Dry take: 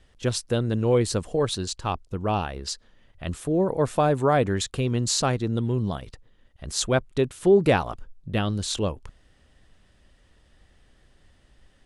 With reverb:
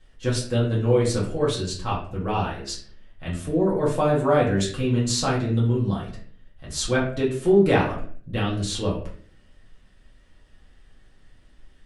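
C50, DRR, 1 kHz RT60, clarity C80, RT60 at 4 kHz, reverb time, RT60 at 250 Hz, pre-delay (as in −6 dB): 6.0 dB, −6.5 dB, 0.45 s, 10.5 dB, 0.35 s, 0.55 s, 0.75 s, 4 ms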